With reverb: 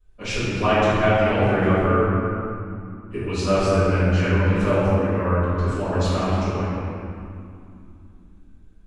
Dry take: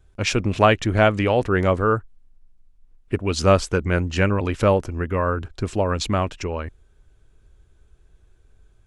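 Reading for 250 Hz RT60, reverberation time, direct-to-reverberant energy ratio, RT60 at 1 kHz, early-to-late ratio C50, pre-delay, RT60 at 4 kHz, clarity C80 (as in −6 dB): 4.1 s, 2.5 s, −16.0 dB, 2.5 s, −5.0 dB, 3 ms, 1.5 s, −3.0 dB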